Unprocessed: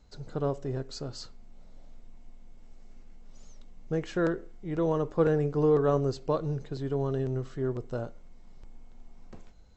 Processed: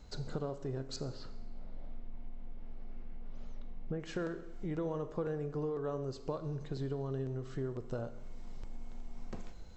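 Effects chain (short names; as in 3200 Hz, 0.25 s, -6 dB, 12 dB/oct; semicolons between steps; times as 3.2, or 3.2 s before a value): compressor 5:1, threshold -42 dBFS, peak gain reduction 20 dB; 0.96–4 air absorption 320 m; reverb RT60 1.1 s, pre-delay 30 ms, DRR 11.5 dB; gain +5.5 dB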